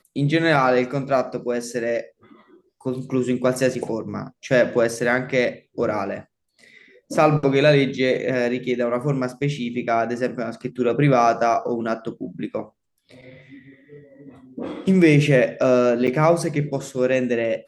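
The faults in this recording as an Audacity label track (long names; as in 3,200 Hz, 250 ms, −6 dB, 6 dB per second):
16.070000	16.080000	drop-out 7.7 ms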